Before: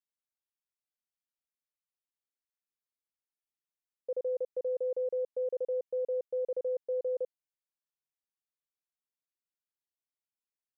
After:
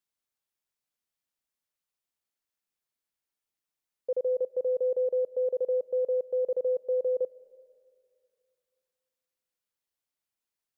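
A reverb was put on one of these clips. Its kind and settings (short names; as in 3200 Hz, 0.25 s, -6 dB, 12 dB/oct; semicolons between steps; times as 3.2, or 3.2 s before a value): digital reverb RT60 2.4 s, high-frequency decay 0.8×, pre-delay 95 ms, DRR 19.5 dB; gain +5 dB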